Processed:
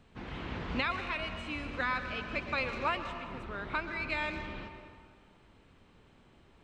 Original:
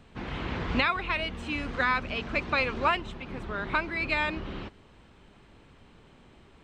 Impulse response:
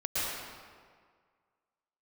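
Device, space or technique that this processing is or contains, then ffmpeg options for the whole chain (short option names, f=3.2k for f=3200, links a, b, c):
saturated reverb return: -filter_complex "[0:a]asplit=2[a][b];[1:a]atrim=start_sample=2205[c];[b][c]afir=irnorm=-1:irlink=0,asoftclip=type=tanh:threshold=-13.5dB,volume=-12.5dB[d];[a][d]amix=inputs=2:normalize=0,volume=-8dB"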